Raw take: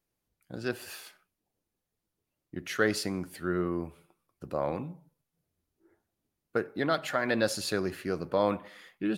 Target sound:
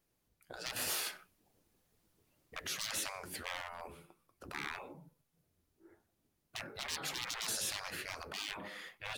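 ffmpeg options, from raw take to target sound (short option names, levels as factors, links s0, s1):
-filter_complex "[0:a]asettb=1/sr,asplit=3[s0][s1][s2];[s0]atrim=end=0.764[s3];[s1]atrim=start=0.76:end=2.67,asetpts=PTS-STARTPTS,afade=t=in:d=0.004:c=qsin,afade=t=out:st=1.906:d=0.004:c=qsin,acontrast=68[s4];[s2]atrim=start=2.666[s5];[s3][s4]acrossfade=d=0.004:c1=hsin:c2=qsin[s6];[s6][s5]acrossfade=d=0.004:c1=qsin:c2=hsin,aeval=exprs='0.0668*(abs(mod(val(0)/0.0668+3,4)-2)-1)':c=same,afftfilt=real='re*lt(hypot(re,im),0.0251)':imag='im*lt(hypot(re,im),0.0251)':win_size=1024:overlap=0.75,volume=1.5"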